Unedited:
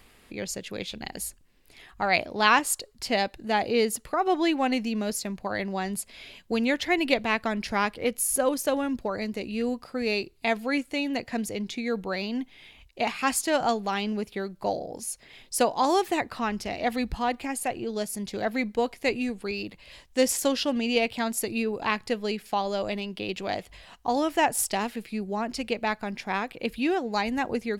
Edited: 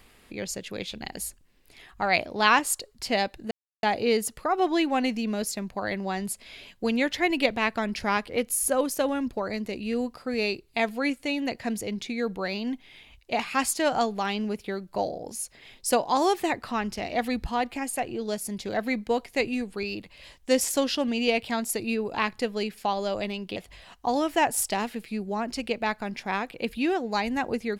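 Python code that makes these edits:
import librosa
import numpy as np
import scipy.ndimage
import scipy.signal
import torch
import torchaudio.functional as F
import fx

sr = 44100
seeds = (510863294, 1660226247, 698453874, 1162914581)

y = fx.edit(x, sr, fx.insert_silence(at_s=3.51, length_s=0.32),
    fx.cut(start_s=23.24, length_s=0.33), tone=tone)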